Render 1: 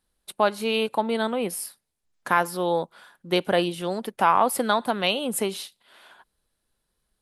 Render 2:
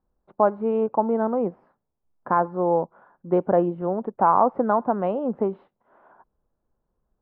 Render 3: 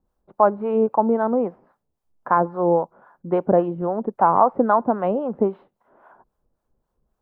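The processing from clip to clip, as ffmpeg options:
-af "lowpass=f=1100:w=0.5412,lowpass=f=1100:w=1.3066,volume=1.41"
-filter_complex "[0:a]acrossover=split=610[s0][s1];[s0]aeval=exprs='val(0)*(1-0.7/2+0.7/2*cos(2*PI*3.7*n/s))':c=same[s2];[s1]aeval=exprs='val(0)*(1-0.7/2-0.7/2*cos(2*PI*3.7*n/s))':c=same[s3];[s2][s3]amix=inputs=2:normalize=0,volume=2"

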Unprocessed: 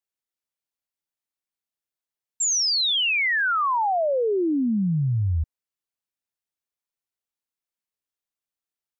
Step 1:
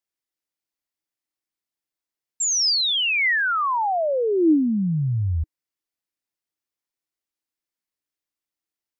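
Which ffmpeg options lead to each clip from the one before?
-af "equalizer=f=315:t=o:w=0.33:g=8,equalizer=f=2000:t=o:w=0.33:g=3,equalizer=f=5000:t=o:w=0.33:g=3"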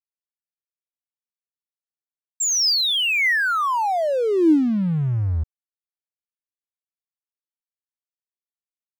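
-af "aeval=exprs='sgn(val(0))*max(abs(val(0))-0.01,0)':c=same,volume=1.26"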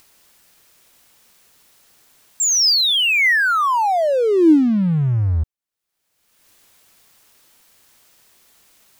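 -af "acompressor=mode=upward:threshold=0.0355:ratio=2.5,volume=1.58"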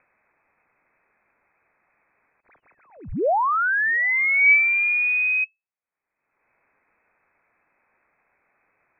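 -af "lowpass=f=2200:t=q:w=0.5098,lowpass=f=2200:t=q:w=0.6013,lowpass=f=2200:t=q:w=0.9,lowpass=f=2200:t=q:w=2.563,afreqshift=-2600,volume=0.631"

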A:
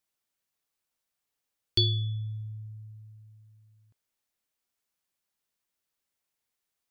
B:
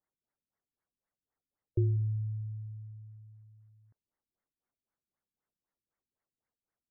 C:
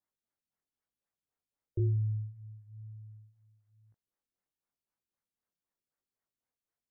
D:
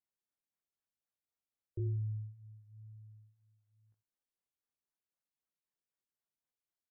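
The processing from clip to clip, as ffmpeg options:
-af "afftfilt=real='re*lt(b*sr/1024,330*pow(2300/330,0.5+0.5*sin(2*PI*3.9*pts/sr)))':imag='im*lt(b*sr/1024,330*pow(2300/330,0.5+0.5*sin(2*PI*3.9*pts/sr)))':win_size=1024:overlap=0.75"
-af "flanger=delay=18.5:depth=5.8:speed=1"
-af "aecho=1:1:84:0.15,volume=0.447"

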